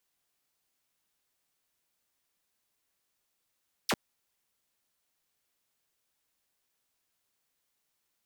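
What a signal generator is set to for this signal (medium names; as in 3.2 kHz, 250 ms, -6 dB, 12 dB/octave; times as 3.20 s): laser zap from 6.4 kHz, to 130 Hz, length 0.05 s saw, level -22.5 dB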